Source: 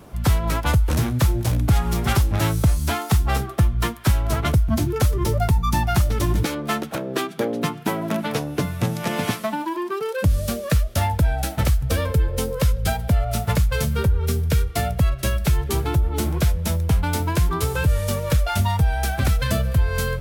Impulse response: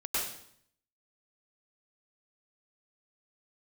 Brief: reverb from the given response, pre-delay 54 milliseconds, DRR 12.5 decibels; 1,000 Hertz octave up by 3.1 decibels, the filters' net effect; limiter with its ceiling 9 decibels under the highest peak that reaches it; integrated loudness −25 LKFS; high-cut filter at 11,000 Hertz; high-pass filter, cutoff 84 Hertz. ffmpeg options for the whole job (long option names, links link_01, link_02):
-filter_complex "[0:a]highpass=84,lowpass=11000,equalizer=frequency=1000:width_type=o:gain=4,alimiter=limit=-16dB:level=0:latency=1,asplit=2[link_01][link_02];[1:a]atrim=start_sample=2205,adelay=54[link_03];[link_02][link_03]afir=irnorm=-1:irlink=0,volume=-19dB[link_04];[link_01][link_04]amix=inputs=2:normalize=0,volume=1dB"